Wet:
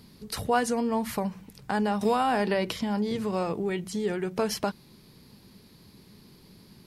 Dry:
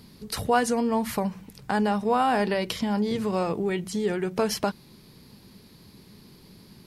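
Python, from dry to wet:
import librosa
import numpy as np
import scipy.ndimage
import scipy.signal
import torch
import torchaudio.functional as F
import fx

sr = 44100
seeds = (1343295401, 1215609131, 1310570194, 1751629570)

y = fx.band_squash(x, sr, depth_pct=100, at=(2.01, 2.71))
y = y * librosa.db_to_amplitude(-2.5)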